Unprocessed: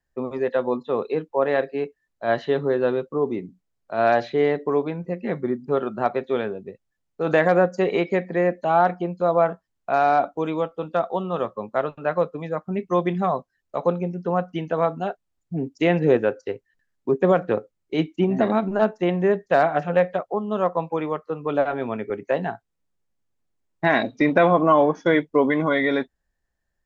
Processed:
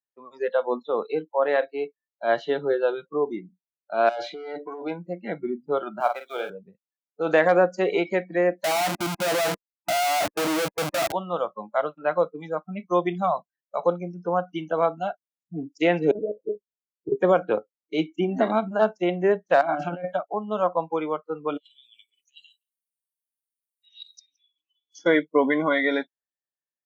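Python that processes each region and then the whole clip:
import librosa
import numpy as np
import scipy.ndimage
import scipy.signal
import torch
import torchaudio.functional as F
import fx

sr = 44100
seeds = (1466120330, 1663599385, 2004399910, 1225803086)

y = fx.chain(x, sr, fx.tube_stage(drive_db=18.0, bias=0.25),
    fx.peak_eq(hz=170.0, db=-5.0, octaves=0.74),
    fx.over_compress(threshold_db=-29.0, ratio=-1.0), at=(4.09, 4.99))
y = fx.chain(y, sr, fx.law_mismatch(coded='A'),
    fx.highpass(hz=320.0, slope=12),
    fx.doubler(ms=48.0, db=-7.5), at=(6.0, 6.5))
y = fx.chain(y, sr, fx.peak_eq(hz=970.0, db=-5.0, octaves=0.28),
    fx.schmitt(flips_db=-36.0), at=(8.64, 11.12))
y = fx.chain(y, sr, fx.cheby1_lowpass(hz=710.0, order=5),
    fx.over_compress(threshold_db=-23.0, ratio=-0.5),
    fx.lpc_monotone(seeds[0], pitch_hz=210.0, order=10), at=(16.11, 17.12))
y = fx.chain(y, sr, fx.peak_eq(hz=270.0, db=11.5, octaves=0.34),
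    fx.over_compress(threshold_db=-26.0, ratio=-1.0), at=(19.61, 20.13))
y = fx.chain(y, sr, fx.over_compress(threshold_db=-29.0, ratio=-1.0),
    fx.ellip_highpass(hz=2900.0, order=4, stop_db=50),
    fx.echo_single(ms=169, db=-23.5), at=(21.57, 24.99))
y = fx.noise_reduce_blind(y, sr, reduce_db=20)
y = scipy.signal.sosfilt(scipy.signal.butter(2, 250.0, 'highpass', fs=sr, output='sos'), y)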